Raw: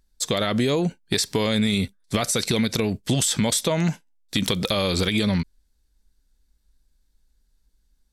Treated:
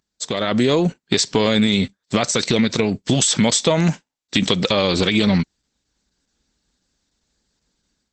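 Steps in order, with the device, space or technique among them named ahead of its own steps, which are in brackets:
video call (high-pass filter 130 Hz 12 dB per octave; automatic gain control gain up to 10 dB; Opus 12 kbit/s 48,000 Hz)

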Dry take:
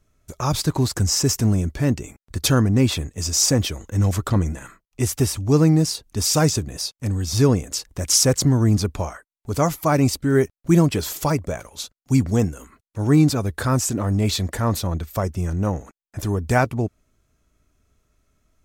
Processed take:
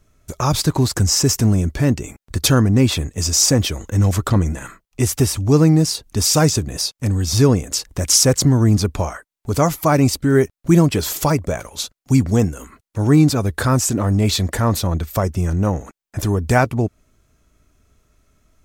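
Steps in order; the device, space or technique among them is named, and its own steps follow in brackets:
parallel compression (in parallel at −2 dB: downward compressor, threshold −26 dBFS, peak gain reduction 15 dB)
on the sum: level +1.5 dB

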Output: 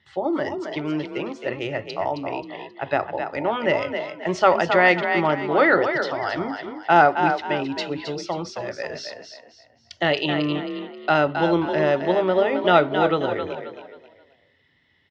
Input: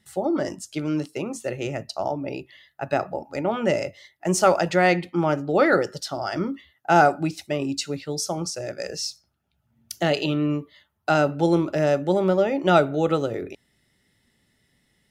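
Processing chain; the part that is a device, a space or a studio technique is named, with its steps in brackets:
frequency-shifting delay pedal into a guitar cabinet (echo with shifted repeats 267 ms, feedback 33%, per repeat +35 Hz, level −7 dB; loudspeaker in its box 84–4,400 Hz, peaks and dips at 88 Hz +8 dB, 130 Hz −3 dB, 200 Hz −9 dB, 1,000 Hz +7 dB, 1,900 Hz +7 dB, 3,200 Hz +6 dB)

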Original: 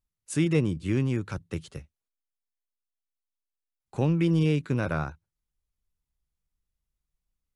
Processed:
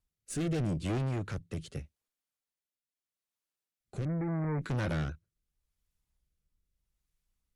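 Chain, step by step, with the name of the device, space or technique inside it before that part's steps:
overdriven rotary cabinet (tube saturation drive 33 dB, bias 0.25; rotating-speaker cabinet horn 0.8 Hz)
0:04.05–0:04.62: Butterworth low-pass 2,200 Hz 96 dB per octave
level +5 dB

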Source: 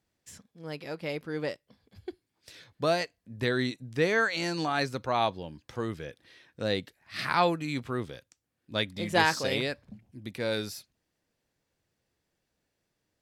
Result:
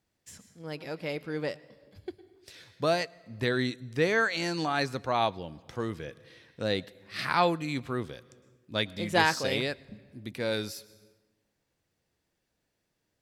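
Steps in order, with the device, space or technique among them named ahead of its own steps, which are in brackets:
compressed reverb return (on a send at −9.5 dB: convolution reverb RT60 0.90 s, pre-delay 103 ms + downward compressor 6 to 1, threshold −42 dBFS, peak gain reduction 20.5 dB)

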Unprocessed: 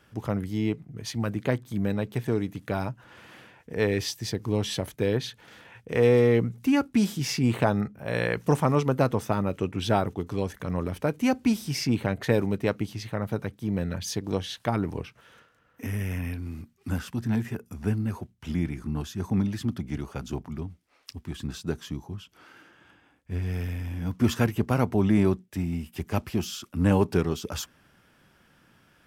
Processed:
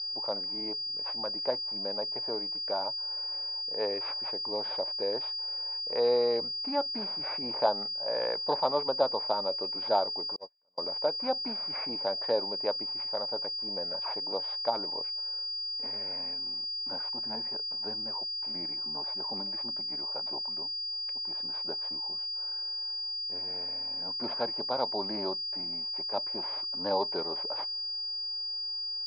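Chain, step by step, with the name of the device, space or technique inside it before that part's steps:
toy sound module (linearly interpolated sample-rate reduction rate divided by 6×; switching amplifier with a slow clock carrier 4,800 Hz; loudspeaker in its box 510–4,700 Hz, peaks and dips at 570 Hz +9 dB, 890 Hz +9 dB, 1,300 Hz −4 dB, 1,900 Hz −6 dB, 2,900 Hz −7 dB, 4,600 Hz +8 dB)
0:10.36–0:10.78: noise gate −23 dBFS, range −41 dB
level −5 dB

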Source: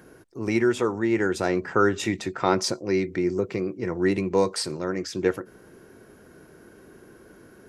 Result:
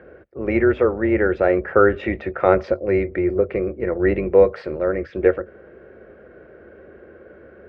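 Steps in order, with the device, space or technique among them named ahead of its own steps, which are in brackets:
sub-octave bass pedal (sub-octave generator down 2 octaves, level −4 dB; loudspeaker in its box 77–2,300 Hz, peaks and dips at 110 Hz −9 dB, 170 Hz −9 dB, 270 Hz −8 dB, 550 Hz +10 dB, 960 Hz −10 dB)
level +5.5 dB

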